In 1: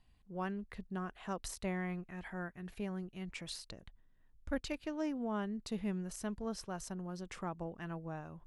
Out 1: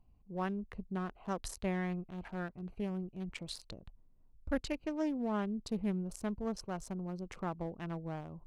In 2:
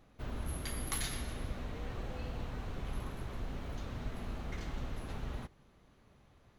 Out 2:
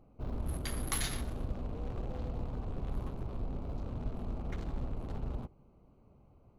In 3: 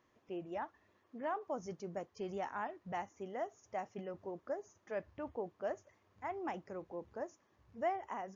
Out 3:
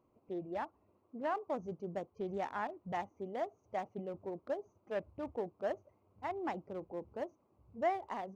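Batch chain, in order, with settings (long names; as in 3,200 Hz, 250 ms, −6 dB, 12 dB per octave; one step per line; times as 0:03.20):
adaptive Wiener filter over 25 samples
level +3 dB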